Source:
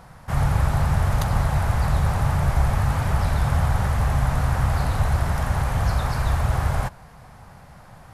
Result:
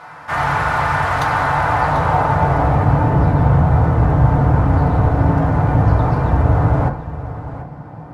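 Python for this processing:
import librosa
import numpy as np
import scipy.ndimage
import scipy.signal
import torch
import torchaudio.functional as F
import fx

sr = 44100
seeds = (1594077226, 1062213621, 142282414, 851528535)

p1 = fx.filter_sweep_bandpass(x, sr, from_hz=1600.0, to_hz=310.0, start_s=1.25, end_s=3.16, q=0.77)
p2 = np.clip(10.0 ** (33.0 / 20.0) * p1, -1.0, 1.0) / 10.0 ** (33.0 / 20.0)
p3 = p1 + (p2 * 10.0 ** (-6.0 / 20.0))
p4 = p3 + 10.0 ** (-13.5 / 20.0) * np.pad(p3, (int(740 * sr / 1000.0), 0))[:len(p3)]
p5 = fx.rev_fdn(p4, sr, rt60_s=0.38, lf_ratio=1.4, hf_ratio=0.35, size_ms=20.0, drr_db=-2.0)
y = p5 * 10.0 ** (7.5 / 20.0)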